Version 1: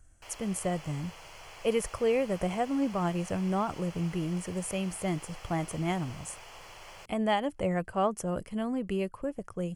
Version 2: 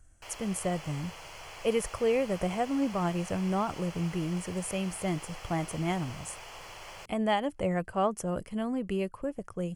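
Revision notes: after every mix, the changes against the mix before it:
background +3.0 dB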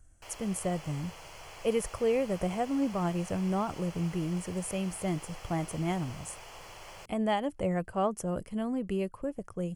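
master: add peaking EQ 2.3 kHz -3.5 dB 3 oct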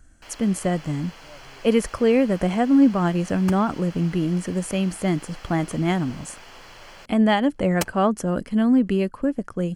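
speech +6.5 dB; second sound: unmuted; master: add fifteen-band graphic EQ 100 Hz -4 dB, 250 Hz +10 dB, 1.6 kHz +8 dB, 4 kHz +8 dB, 10 kHz -4 dB

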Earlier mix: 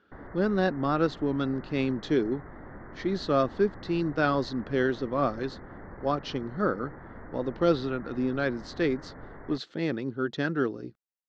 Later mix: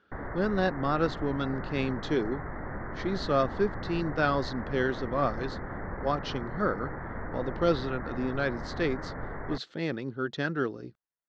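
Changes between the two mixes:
background +8.5 dB; master: add peaking EQ 290 Hz -4 dB 1.2 oct

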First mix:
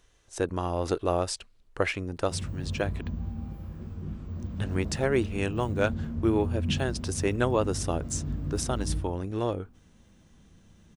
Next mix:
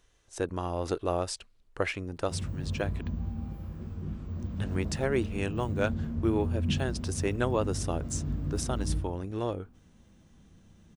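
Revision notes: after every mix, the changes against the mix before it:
speech -3.0 dB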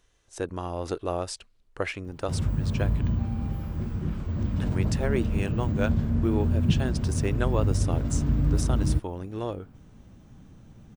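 background +11.0 dB; reverb: off

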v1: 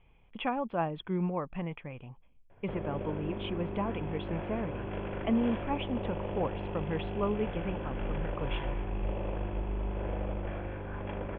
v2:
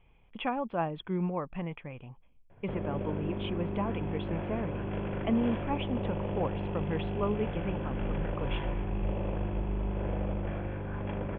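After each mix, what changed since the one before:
background: add peaking EQ 150 Hz +6.5 dB 1.5 oct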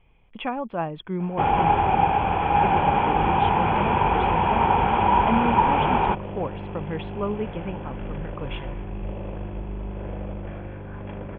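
speech +3.5 dB; first sound: unmuted

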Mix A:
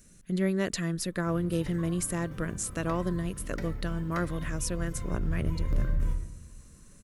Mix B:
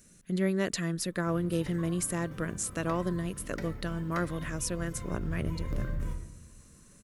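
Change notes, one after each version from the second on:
master: add bass shelf 72 Hz -9 dB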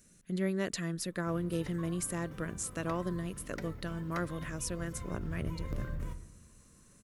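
speech -4.0 dB; background: send -7.5 dB

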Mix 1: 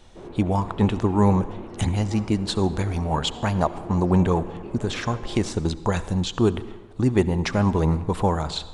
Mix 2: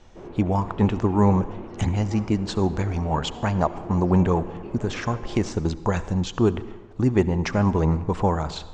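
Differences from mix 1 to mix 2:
speech: add peaking EQ 3.8 kHz -7 dB 0.63 oct; master: add steep low-pass 7.1 kHz 36 dB/octave

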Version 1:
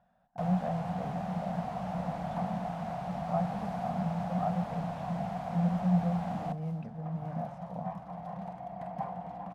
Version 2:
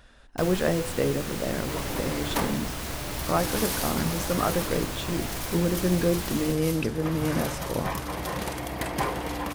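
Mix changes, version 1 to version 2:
first sound -11.5 dB; master: remove two resonant band-passes 360 Hz, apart 2 oct

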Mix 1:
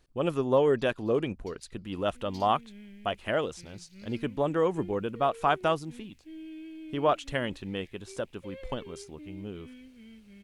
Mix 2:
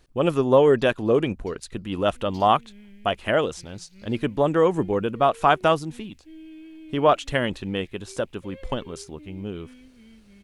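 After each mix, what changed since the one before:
speech +7.0 dB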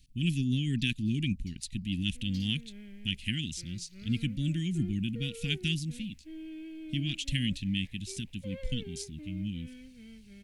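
speech: add inverse Chebyshev band-stop 450–1300 Hz, stop band 50 dB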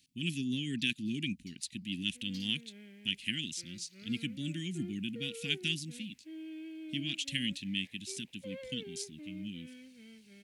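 master: add high-pass 260 Hz 12 dB/octave

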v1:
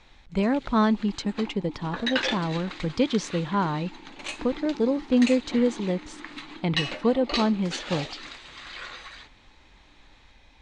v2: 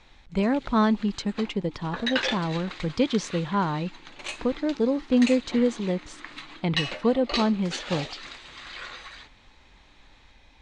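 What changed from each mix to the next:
second sound -7.5 dB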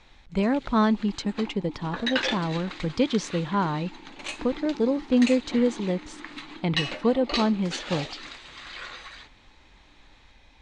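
second sound +7.5 dB

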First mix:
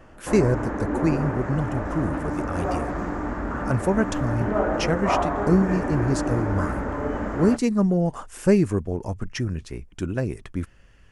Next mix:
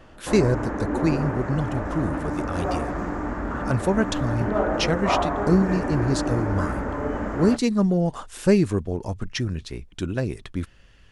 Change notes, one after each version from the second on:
speech: add peaking EQ 3.8 kHz +10 dB 0.67 oct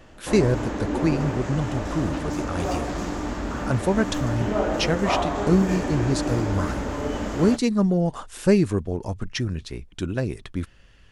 background: add resonant high shelf 2.4 kHz +13 dB, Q 1.5

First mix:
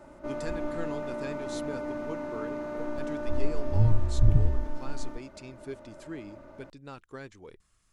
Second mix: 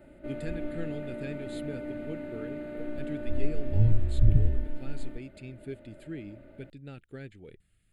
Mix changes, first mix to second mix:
speech: add peaking EQ 130 Hz +5.5 dB 1.7 oct; master: add static phaser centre 2.5 kHz, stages 4

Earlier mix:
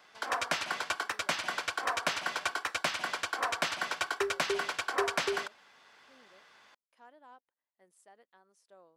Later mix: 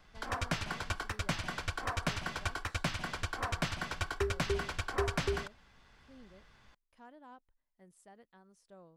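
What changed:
background -5.5 dB; master: remove high-pass 440 Hz 12 dB/octave

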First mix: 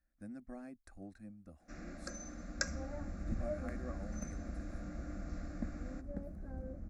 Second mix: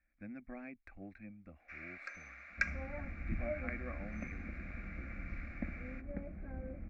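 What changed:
first sound: add high-pass 1.2 kHz 12 dB/octave; master: add resonant low-pass 2.3 kHz, resonance Q 11

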